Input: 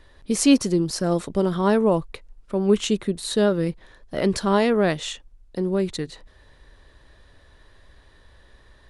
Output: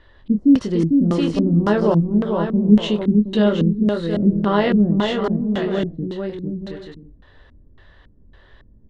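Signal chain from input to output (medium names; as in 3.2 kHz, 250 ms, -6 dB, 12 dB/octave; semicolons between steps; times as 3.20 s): treble shelf 8.6 kHz +4.5 dB; doubling 24 ms -6 dB; on a send: bouncing-ball echo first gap 450 ms, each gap 0.6×, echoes 5; on the sum: LFO low-pass square 1.8 Hz 230–2700 Hz; peaking EQ 2.4 kHz -14 dB 0.31 oct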